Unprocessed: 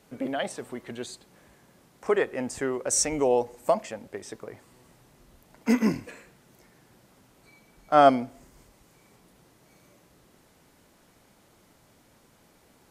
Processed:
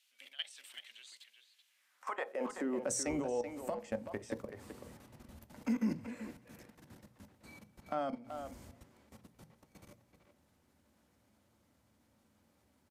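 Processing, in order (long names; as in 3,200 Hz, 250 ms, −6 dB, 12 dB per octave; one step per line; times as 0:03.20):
downward compressor 4 to 1, threshold −32 dBFS, peak gain reduction 17 dB
high-pass filter sweep 3,000 Hz → 79 Hz, 0:01.66–0:03.12
output level in coarse steps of 19 dB
far-end echo of a speakerphone 380 ms, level −7 dB
on a send at −11 dB: convolution reverb RT60 0.20 s, pre-delay 3 ms
on the sum: level +1.5 dB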